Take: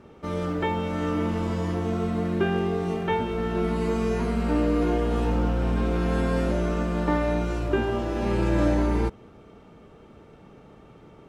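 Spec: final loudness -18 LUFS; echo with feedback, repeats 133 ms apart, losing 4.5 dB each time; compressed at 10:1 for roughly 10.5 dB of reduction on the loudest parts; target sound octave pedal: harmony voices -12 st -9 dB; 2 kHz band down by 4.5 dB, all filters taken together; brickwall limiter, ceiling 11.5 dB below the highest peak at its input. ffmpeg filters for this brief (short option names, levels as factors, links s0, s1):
-filter_complex "[0:a]equalizer=f=2000:t=o:g=-6,acompressor=threshold=0.0355:ratio=10,alimiter=level_in=2.11:limit=0.0631:level=0:latency=1,volume=0.473,aecho=1:1:133|266|399|532|665|798|931|1064|1197:0.596|0.357|0.214|0.129|0.0772|0.0463|0.0278|0.0167|0.01,asplit=2[s0][s1];[s1]asetrate=22050,aresample=44100,atempo=2,volume=0.355[s2];[s0][s2]amix=inputs=2:normalize=0,volume=10.6"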